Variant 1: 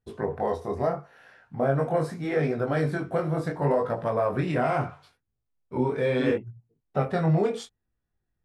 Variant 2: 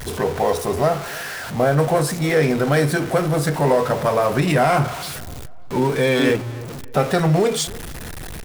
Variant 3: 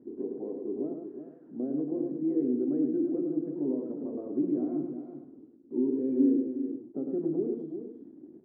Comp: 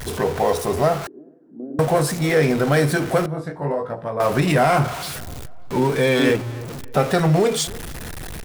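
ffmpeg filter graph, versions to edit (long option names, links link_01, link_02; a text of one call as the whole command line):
ffmpeg -i take0.wav -i take1.wav -i take2.wav -filter_complex "[1:a]asplit=3[link_01][link_02][link_03];[link_01]atrim=end=1.072[link_04];[2:a]atrim=start=1.068:end=1.792[link_05];[link_02]atrim=start=1.788:end=3.262[link_06];[0:a]atrim=start=3.258:end=4.202[link_07];[link_03]atrim=start=4.198[link_08];[link_04][link_05]acrossfade=duration=0.004:curve1=hsin:curve2=hsin[link_09];[link_09][link_06]acrossfade=duration=0.004:curve1=hsin:curve2=hsin[link_10];[link_10][link_07]acrossfade=duration=0.004:curve1=hsin:curve2=hsin[link_11];[link_11][link_08]acrossfade=duration=0.004:curve1=hsin:curve2=hsin" out.wav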